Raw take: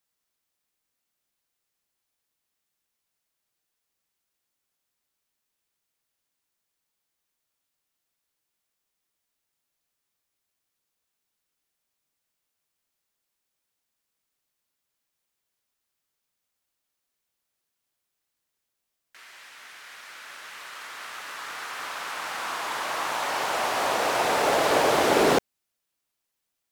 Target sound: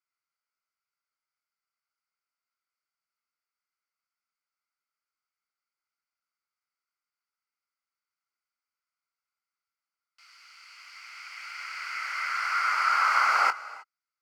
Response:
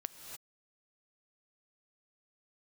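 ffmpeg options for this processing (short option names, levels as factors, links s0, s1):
-filter_complex "[0:a]asplit=3[s0][s1][s2];[s0]bandpass=f=730:t=q:w=8,volume=1[s3];[s1]bandpass=f=1090:t=q:w=8,volume=0.501[s4];[s2]bandpass=f=2440:t=q:w=8,volume=0.355[s5];[s3][s4][s5]amix=inputs=3:normalize=0,asetrate=82908,aresample=44100,asplit=2[s6][s7];[1:a]atrim=start_sample=2205,adelay=23[s8];[s7][s8]afir=irnorm=-1:irlink=0,volume=0.335[s9];[s6][s9]amix=inputs=2:normalize=0,volume=2.11"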